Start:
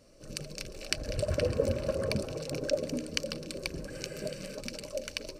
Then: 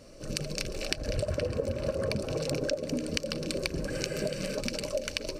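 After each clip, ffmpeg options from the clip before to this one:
ffmpeg -i in.wav -af "highshelf=frequency=8000:gain=-4,acompressor=threshold=-35dB:ratio=12,volume=8.5dB" out.wav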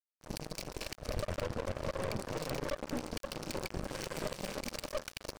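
ffmpeg -i in.wav -af "aeval=exprs='sgn(val(0))*max(abs(val(0))-0.0188,0)':channel_layout=same,aeval=exprs='(tanh(63.1*val(0)+0.8)-tanh(0.8))/63.1':channel_layout=same,volume=5.5dB" out.wav

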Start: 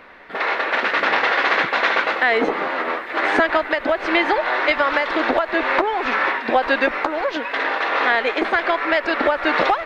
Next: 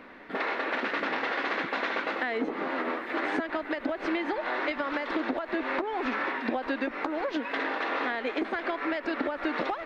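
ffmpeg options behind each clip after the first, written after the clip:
ffmpeg -i in.wav -af "equalizer=frequency=260:width=1.3:gain=11,acompressor=threshold=-21dB:ratio=6,volume=-6dB" out.wav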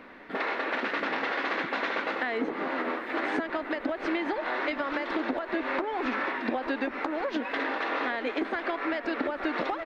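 ffmpeg -i in.wav -filter_complex "[0:a]asplit=2[link_01][link_02];[link_02]adelay=874.6,volume=-12dB,highshelf=frequency=4000:gain=-19.7[link_03];[link_01][link_03]amix=inputs=2:normalize=0" out.wav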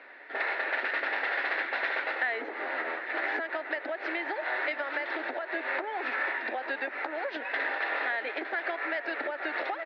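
ffmpeg -i in.wav -af "highpass=frequency=420:width=0.5412,highpass=frequency=420:width=1.3066,equalizer=frequency=480:width_type=q:width=4:gain=-6,equalizer=frequency=1100:width_type=q:width=4:gain=-9,equalizer=frequency=1800:width_type=q:width=4:gain=5,equalizer=frequency=3200:width_type=q:width=4:gain=-4,lowpass=frequency=4400:width=0.5412,lowpass=frequency=4400:width=1.3066" out.wav

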